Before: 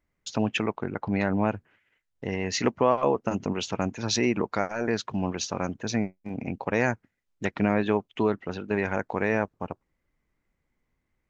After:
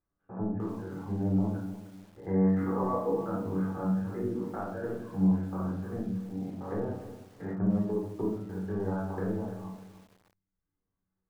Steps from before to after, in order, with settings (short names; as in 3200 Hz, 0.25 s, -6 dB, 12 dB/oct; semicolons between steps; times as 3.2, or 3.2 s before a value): stepped spectrum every 0.1 s; HPF 50 Hz 6 dB/oct; reverb removal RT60 1.1 s; steep low-pass 1700 Hz 48 dB/oct; treble ducked by the level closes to 510 Hz, closed at -24 dBFS; 1.53–3.71 bell 1200 Hz +7 dB 1.7 oct; resonator 95 Hz, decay 0.5 s, harmonics all, mix 80%; shoebox room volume 580 m³, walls furnished, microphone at 3.9 m; lo-fi delay 0.301 s, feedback 35%, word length 8-bit, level -13 dB